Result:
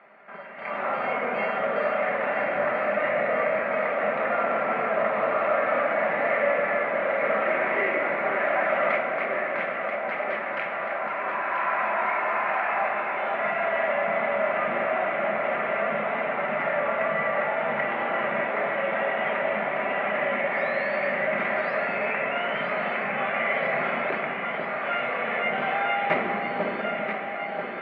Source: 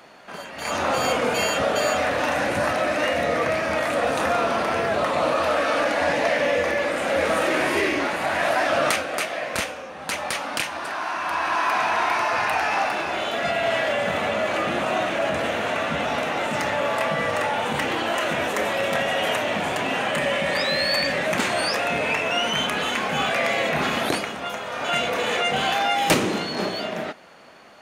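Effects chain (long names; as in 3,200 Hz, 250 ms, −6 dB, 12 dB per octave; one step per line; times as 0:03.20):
loudspeaker in its box 210–2,300 Hz, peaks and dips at 210 Hz +3 dB, 310 Hz −5 dB, 650 Hz +5 dB, 1,300 Hz +5 dB, 2,100 Hz +9 dB
delay that swaps between a low-pass and a high-pass 492 ms, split 980 Hz, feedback 85%, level −5.5 dB
convolution reverb RT60 1.7 s, pre-delay 5 ms, DRR 4 dB
level −8.5 dB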